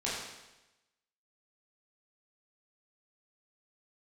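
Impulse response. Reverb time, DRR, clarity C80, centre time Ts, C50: 1.0 s, -8.0 dB, 3.0 dB, 71 ms, 0.5 dB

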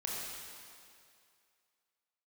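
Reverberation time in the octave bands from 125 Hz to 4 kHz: 2.0, 2.1, 2.3, 2.4, 2.3, 2.2 s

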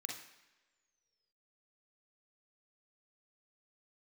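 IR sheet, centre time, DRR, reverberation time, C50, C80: 40 ms, -0.5 dB, not exponential, 3.5 dB, 8.5 dB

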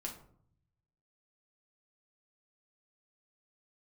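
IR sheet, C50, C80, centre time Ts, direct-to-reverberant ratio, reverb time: 8.5 dB, 12.5 dB, 21 ms, -1.5 dB, 0.60 s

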